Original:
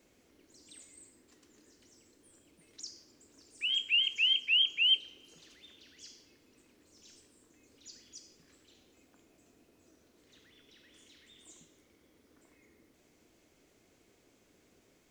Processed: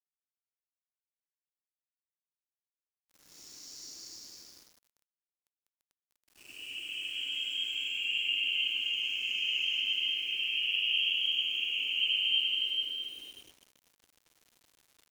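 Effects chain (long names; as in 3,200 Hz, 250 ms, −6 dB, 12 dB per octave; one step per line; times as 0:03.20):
extreme stretch with random phases 4.1×, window 0.50 s, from 0:01.89
dynamic equaliser 3,800 Hz, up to −4 dB, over −41 dBFS, Q 1.2
centre clipping without the shift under −50.5 dBFS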